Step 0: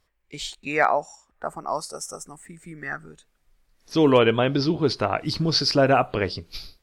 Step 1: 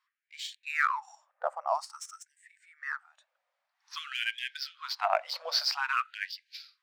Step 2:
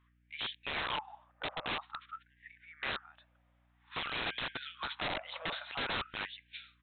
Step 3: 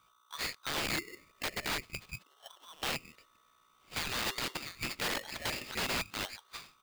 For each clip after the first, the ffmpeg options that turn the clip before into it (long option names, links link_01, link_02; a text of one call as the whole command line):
ffmpeg -i in.wav -af "adynamicsmooth=sensitivity=6.5:basefreq=4700,tiltshelf=frequency=1300:gain=3.5,afftfilt=real='re*gte(b*sr/1024,480*pow(1600/480,0.5+0.5*sin(2*PI*0.51*pts/sr)))':imag='im*gte(b*sr/1024,480*pow(1600/480,0.5+0.5*sin(2*PI*0.51*pts/sr)))':win_size=1024:overlap=0.75,volume=-2.5dB" out.wav
ffmpeg -i in.wav -af "acompressor=threshold=-30dB:ratio=16,aeval=exprs='val(0)+0.0002*(sin(2*PI*60*n/s)+sin(2*PI*2*60*n/s)/2+sin(2*PI*3*60*n/s)/3+sin(2*PI*4*60*n/s)/4+sin(2*PI*5*60*n/s)/5)':channel_layout=same,aresample=8000,aeval=exprs='(mod(53.1*val(0)+1,2)-1)/53.1':channel_layout=same,aresample=44100,volume=4.5dB" out.wav
ffmpeg -i in.wav -af "aeval=exprs='val(0)*sgn(sin(2*PI*1200*n/s))':channel_layout=same,volume=2dB" out.wav